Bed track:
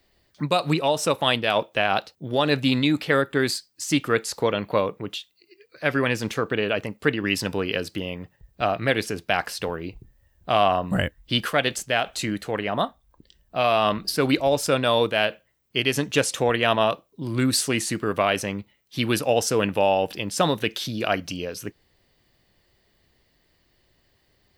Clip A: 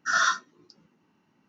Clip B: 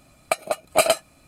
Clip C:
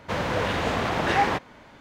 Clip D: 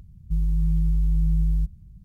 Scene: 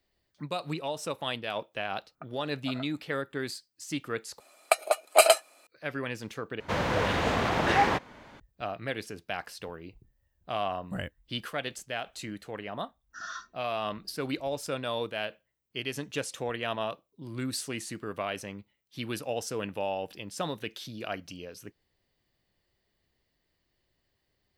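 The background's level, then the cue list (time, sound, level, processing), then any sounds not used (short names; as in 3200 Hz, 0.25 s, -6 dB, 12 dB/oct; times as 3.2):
bed track -12 dB
1.9 add B -16.5 dB + ladder low-pass 1600 Hz, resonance 60%
4.4 replace with B -0.5 dB + HPF 420 Hz 24 dB/oct
6.6 replace with C -1.5 dB
13.08 add A -17 dB, fades 0.05 s
not used: D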